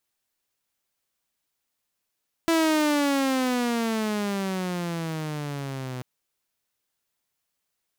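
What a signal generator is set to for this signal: gliding synth tone saw, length 3.54 s, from 333 Hz, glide -17 st, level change -13 dB, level -16 dB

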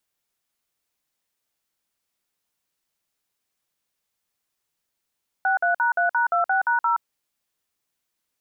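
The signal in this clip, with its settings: DTMF "63#3#26#0", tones 122 ms, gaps 52 ms, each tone -20.5 dBFS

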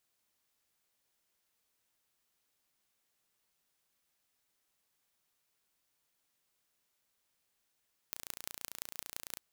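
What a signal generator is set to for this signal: pulse train 29 per s, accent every 5, -10.5 dBFS 1.25 s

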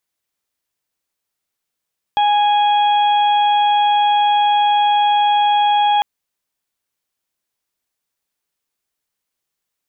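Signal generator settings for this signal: steady additive tone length 3.85 s, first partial 828 Hz, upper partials -20/-19.5/-12 dB, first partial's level -11.5 dB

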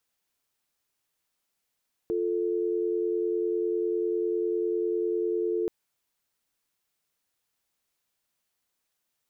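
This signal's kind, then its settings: call progress tone dial tone, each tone -27.5 dBFS 3.58 s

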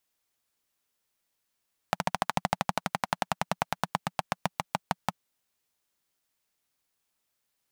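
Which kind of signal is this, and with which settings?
single-cylinder engine model, changing speed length 3.33 s, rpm 1700, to 600, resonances 180/780 Hz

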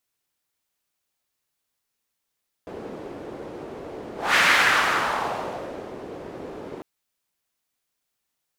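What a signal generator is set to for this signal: whoosh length 4.15 s, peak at 1.70 s, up 0.23 s, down 1.71 s, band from 420 Hz, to 1.9 kHz, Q 1.8, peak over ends 19 dB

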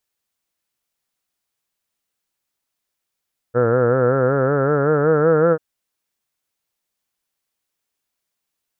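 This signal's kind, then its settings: formant-synthesis vowel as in heard, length 2.04 s, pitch 117 Hz, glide +6 st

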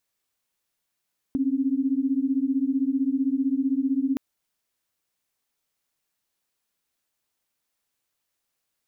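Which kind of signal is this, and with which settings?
chord C4/C#4 sine, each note -24 dBFS 2.82 s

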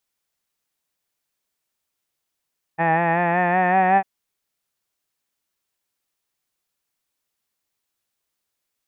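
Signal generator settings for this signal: formant vowel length 1.25 s, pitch 162 Hz, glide +3 st, vibrato depth 0.45 st, F1 780 Hz, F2 1.8 kHz, F3 2.5 kHz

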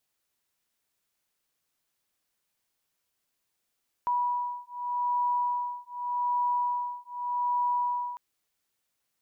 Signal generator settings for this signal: beating tones 975 Hz, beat 0.84 Hz, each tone -29.5 dBFS 4.10 s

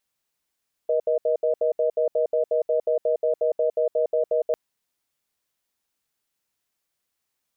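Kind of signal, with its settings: cadence 479 Hz, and 625 Hz, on 0.11 s, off 0.07 s, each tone -21.5 dBFS 3.65 s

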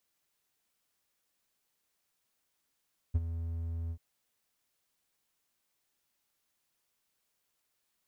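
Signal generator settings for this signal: ADSR triangle 83 Hz, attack 16 ms, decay 35 ms, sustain -11.5 dB, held 0.77 s, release 68 ms -20 dBFS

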